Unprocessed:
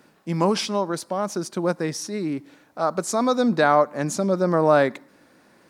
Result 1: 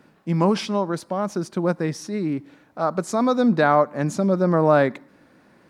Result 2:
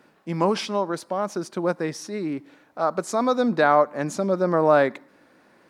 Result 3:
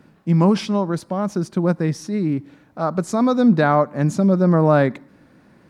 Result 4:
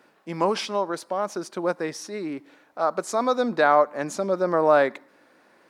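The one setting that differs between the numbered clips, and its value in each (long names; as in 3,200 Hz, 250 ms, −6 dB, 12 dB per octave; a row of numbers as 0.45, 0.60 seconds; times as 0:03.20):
bass and treble, bass: +5, −4, +13, −13 decibels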